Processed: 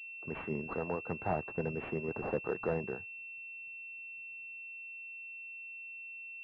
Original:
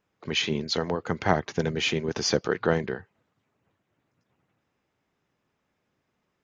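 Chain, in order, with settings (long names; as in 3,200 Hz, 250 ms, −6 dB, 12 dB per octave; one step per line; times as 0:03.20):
dynamic equaliser 880 Hz, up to +5 dB, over −35 dBFS, Q 0.76
soft clipping −13 dBFS, distortion −12 dB
switching amplifier with a slow clock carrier 2,700 Hz
level −9 dB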